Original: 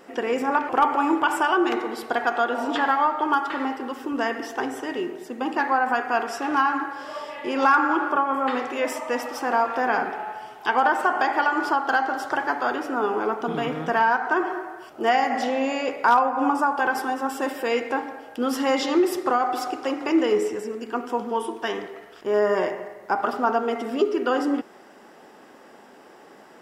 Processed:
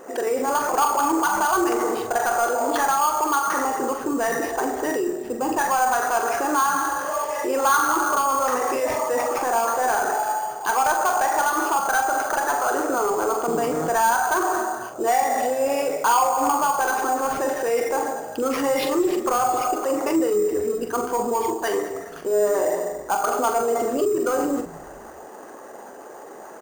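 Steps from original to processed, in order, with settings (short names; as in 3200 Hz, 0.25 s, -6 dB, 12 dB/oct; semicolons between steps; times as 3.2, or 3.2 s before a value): formant sharpening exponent 1.5; bell 950 Hz +6.5 dB 2.2 oct; in parallel at -2 dB: negative-ratio compressor -26 dBFS, ratio -1; on the sum: sample-rate reducer 7700 Hz, jitter 0%; soft clip -8 dBFS, distortion -18 dB; doubler 43 ms -7.5 dB; on a send: frequency-shifting echo 0.21 s, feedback 43%, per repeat -120 Hz, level -21 dB; on the sum: gain -5 dB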